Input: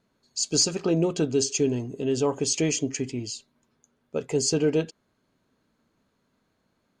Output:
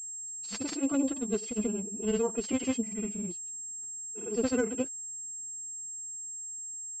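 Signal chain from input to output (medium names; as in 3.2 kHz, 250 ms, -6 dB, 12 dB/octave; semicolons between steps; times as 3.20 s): bass shelf 120 Hz +4.5 dB; in parallel at -1 dB: level held to a coarse grid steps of 12 dB; on the sum: granulator 96 ms, pitch spread up and down by 0 st; formant-preserving pitch shift +8.5 st; class-D stage that switches slowly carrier 7.5 kHz; trim -8 dB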